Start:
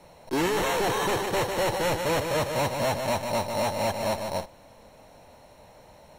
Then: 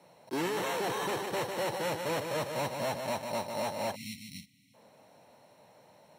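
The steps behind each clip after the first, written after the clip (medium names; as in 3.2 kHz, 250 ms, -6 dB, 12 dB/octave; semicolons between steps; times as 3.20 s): high-pass 120 Hz 24 dB/octave; band-stop 6.7 kHz, Q 17; spectral selection erased 3.95–4.74 s, 290–1900 Hz; trim -7 dB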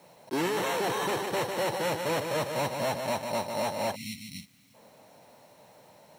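bit crusher 11-bit; trim +3.5 dB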